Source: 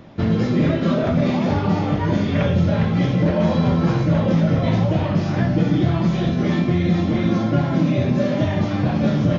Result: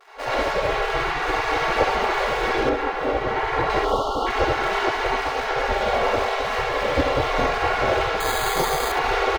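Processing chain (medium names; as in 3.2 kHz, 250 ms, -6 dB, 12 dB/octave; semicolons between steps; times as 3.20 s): median filter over 41 samples; vibrato 0.56 Hz 36 cents; comb 3.6 ms, depth 50%; reverberation RT60 1.0 s, pre-delay 61 ms, DRR -9 dB; level rider; peaking EQ 61 Hz +5.5 dB 2.2 oct; spectral gate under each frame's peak -20 dB weak; 2.69–3.70 s: treble shelf 3 kHz -10.5 dB; 3.85–4.27 s: spectral selection erased 1.4–2.8 kHz; 8.20–8.92 s: careless resampling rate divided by 8×, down filtered, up hold; feedback delay 69 ms, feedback 16%, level -13 dB; trim +7 dB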